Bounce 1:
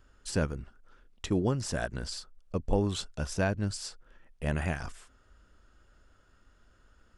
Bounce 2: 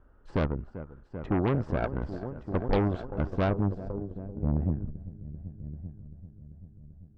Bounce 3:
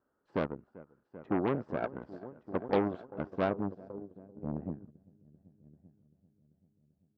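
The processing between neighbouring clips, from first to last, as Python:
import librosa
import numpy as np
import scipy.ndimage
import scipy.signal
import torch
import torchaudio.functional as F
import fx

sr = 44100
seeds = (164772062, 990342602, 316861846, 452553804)

y1 = fx.echo_heads(x, sr, ms=390, heads='all three', feedback_pct=50, wet_db=-15.5)
y1 = fx.filter_sweep_lowpass(y1, sr, from_hz=960.0, to_hz=160.0, start_s=3.26, end_s=5.08, q=1.0)
y1 = fx.cheby_harmonics(y1, sr, harmonics=(5, 8), levels_db=(-22, -16), full_scale_db=-14.5)
y2 = scipy.signal.sosfilt(scipy.signal.butter(2, 210.0, 'highpass', fs=sr, output='sos'), y1)
y2 = fx.high_shelf(y2, sr, hz=4000.0, db=-9.0)
y2 = fx.upward_expand(y2, sr, threshold_db=-48.0, expansion=1.5)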